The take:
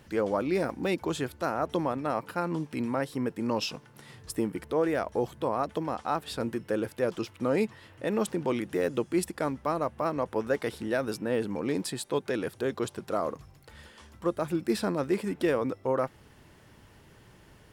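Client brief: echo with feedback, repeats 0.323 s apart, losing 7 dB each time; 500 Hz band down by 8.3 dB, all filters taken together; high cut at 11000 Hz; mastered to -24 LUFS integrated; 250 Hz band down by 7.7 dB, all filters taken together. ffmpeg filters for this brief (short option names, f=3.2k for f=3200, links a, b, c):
-af "lowpass=11k,equalizer=f=250:t=o:g=-7.5,equalizer=f=500:t=o:g=-8,aecho=1:1:323|646|969|1292|1615:0.447|0.201|0.0905|0.0407|0.0183,volume=11.5dB"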